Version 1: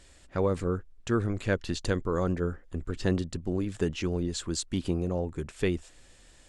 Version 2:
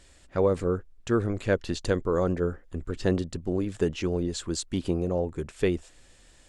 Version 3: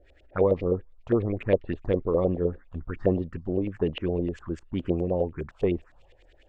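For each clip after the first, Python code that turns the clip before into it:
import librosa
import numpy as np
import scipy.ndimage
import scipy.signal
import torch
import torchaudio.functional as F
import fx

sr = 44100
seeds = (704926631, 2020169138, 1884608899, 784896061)

y1 = fx.dynamic_eq(x, sr, hz=520.0, q=0.98, threshold_db=-39.0, ratio=4.0, max_db=5)
y2 = fx.env_phaser(y1, sr, low_hz=170.0, high_hz=1500.0, full_db=-23.0)
y2 = fx.filter_lfo_lowpass(y2, sr, shape='saw_up', hz=9.8, low_hz=490.0, high_hz=3000.0, q=2.8)
y2 = fx.echo_wet_highpass(y2, sr, ms=415, feedback_pct=70, hz=5200.0, wet_db=-20.0)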